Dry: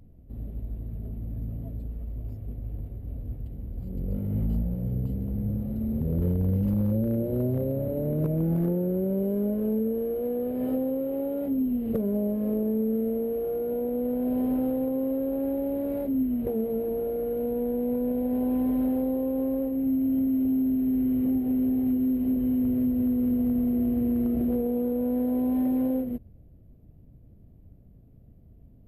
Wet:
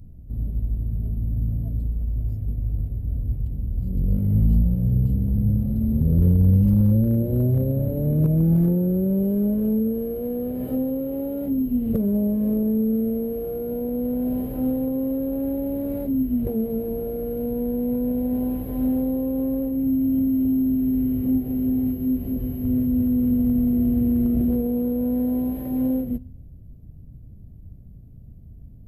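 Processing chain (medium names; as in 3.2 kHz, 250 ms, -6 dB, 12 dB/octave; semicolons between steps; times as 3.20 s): tone controls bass +11 dB, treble +7 dB; de-hum 253.9 Hz, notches 36; trim -1 dB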